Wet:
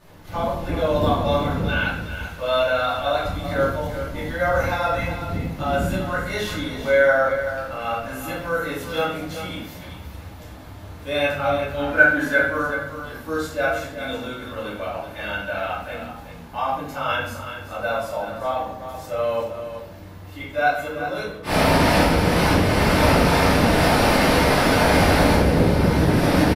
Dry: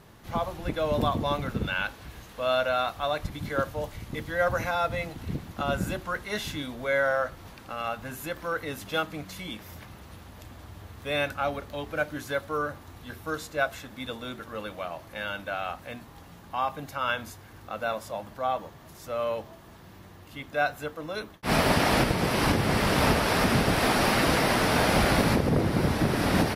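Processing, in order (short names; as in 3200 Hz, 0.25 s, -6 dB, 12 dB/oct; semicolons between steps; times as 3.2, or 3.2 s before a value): 11.79–12.38 fifteen-band EQ 100 Hz -11 dB, 250 Hz +8 dB, 1600 Hz +12 dB; echo 0.381 s -10 dB; shoebox room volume 140 m³, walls mixed, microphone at 2.6 m; gain -4.5 dB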